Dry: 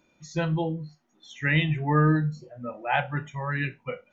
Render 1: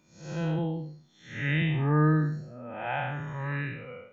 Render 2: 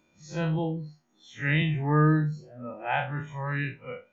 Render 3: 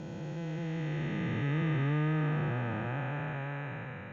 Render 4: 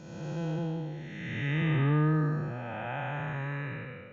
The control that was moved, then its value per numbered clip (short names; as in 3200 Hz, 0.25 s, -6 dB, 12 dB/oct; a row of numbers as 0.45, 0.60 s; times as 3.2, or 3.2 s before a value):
time blur, width: 232, 89, 1430, 578 ms